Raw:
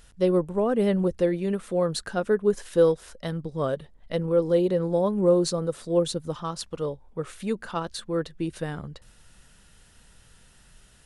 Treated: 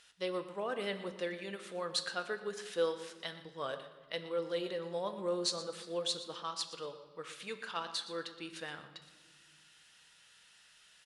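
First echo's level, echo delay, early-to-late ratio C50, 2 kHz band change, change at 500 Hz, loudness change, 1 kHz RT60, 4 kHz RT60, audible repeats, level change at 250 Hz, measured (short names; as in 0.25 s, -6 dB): -15.5 dB, 0.119 s, 10.0 dB, -3.0 dB, -14.0 dB, -12.5 dB, 1.4 s, 1.1 s, 1, -18.5 dB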